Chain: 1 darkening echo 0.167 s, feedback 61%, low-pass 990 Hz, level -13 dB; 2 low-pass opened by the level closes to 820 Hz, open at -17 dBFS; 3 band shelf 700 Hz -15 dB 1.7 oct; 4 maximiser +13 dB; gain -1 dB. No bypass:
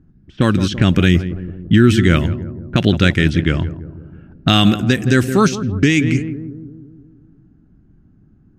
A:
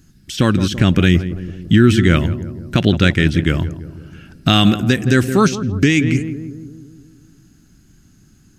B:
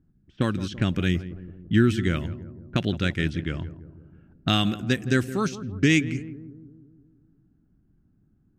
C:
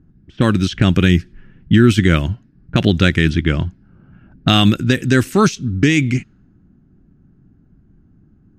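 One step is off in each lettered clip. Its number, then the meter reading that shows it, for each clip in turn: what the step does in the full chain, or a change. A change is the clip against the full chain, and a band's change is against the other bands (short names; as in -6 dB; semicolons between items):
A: 2, momentary loudness spread change +1 LU; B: 4, crest factor change +7.0 dB; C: 1, momentary loudness spread change -4 LU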